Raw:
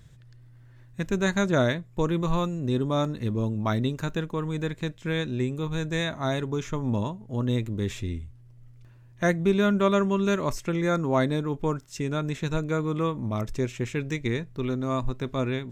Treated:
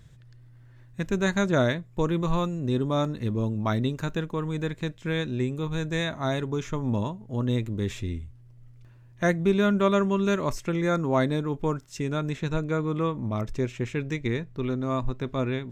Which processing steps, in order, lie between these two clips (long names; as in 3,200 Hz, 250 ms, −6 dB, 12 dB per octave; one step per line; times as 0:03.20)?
high-shelf EQ 6,100 Hz −2.5 dB, from 0:12.34 −8.5 dB